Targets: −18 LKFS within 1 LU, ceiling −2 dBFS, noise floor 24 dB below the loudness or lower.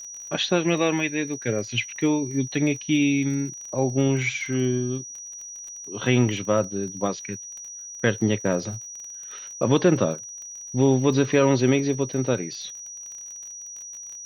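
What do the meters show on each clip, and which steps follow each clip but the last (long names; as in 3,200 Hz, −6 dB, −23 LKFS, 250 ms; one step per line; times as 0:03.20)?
crackle rate 32 per second; interfering tone 5,800 Hz; level of the tone −36 dBFS; integrated loudness −24.0 LKFS; sample peak −6.0 dBFS; target loudness −18.0 LKFS
→ click removal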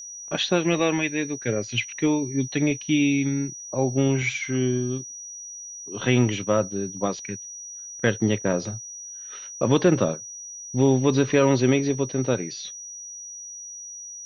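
crackle rate 0 per second; interfering tone 5,800 Hz; level of the tone −36 dBFS
→ notch filter 5,800 Hz, Q 30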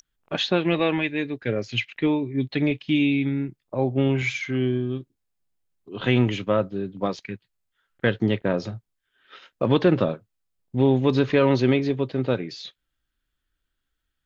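interfering tone none found; integrated loudness −24.0 LKFS; sample peak −6.0 dBFS; target loudness −18.0 LKFS
→ level +6 dB
brickwall limiter −2 dBFS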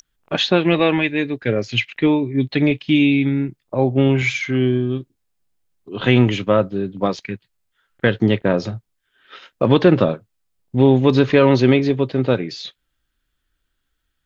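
integrated loudness −18.0 LKFS; sample peak −2.0 dBFS; background noise floor −74 dBFS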